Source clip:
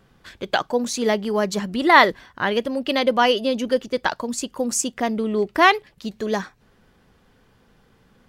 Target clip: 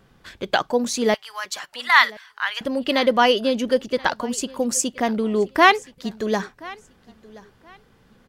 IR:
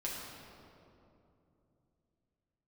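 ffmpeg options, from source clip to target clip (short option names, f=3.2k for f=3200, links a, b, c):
-filter_complex "[0:a]asettb=1/sr,asplit=3[a][b][c];[a]atrim=end=1.144[d];[b]atrim=start=1.14:end=2.61,asetpts=PTS-STARTPTS,afade=t=in:d=0.004:c=qsin,afade=t=out:st=1.466:d=0.004:c=qsin,highpass=f=1.1k:w=0.5412,highpass=f=1.1k:w=1.3066[e];[c]atrim=start=2.606[f];[d][e]acrossfade=d=0.004:c1=hsin:c2=qsin[g];[g][f]acrossfade=d=0.004:c1=qsin:c2=hsin,aecho=1:1:1027|2054:0.0794|0.0191,volume=1dB"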